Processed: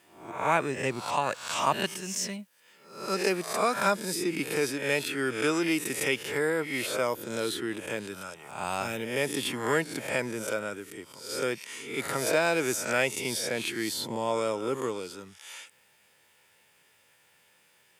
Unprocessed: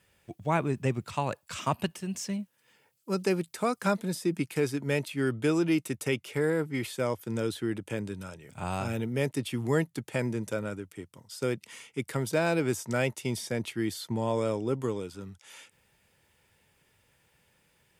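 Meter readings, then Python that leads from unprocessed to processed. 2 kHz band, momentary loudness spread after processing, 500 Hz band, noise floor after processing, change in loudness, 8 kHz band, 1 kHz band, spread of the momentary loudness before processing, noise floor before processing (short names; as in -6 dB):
+6.0 dB, 13 LU, +1.0 dB, -64 dBFS, +1.5 dB, +7.5 dB, +4.5 dB, 11 LU, -70 dBFS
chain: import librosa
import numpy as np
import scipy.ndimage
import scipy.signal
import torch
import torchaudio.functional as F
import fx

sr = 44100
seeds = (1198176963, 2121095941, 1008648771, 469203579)

y = fx.spec_swells(x, sr, rise_s=0.58)
y = fx.highpass(y, sr, hz=620.0, slope=6)
y = y * librosa.db_to_amplitude(4.0)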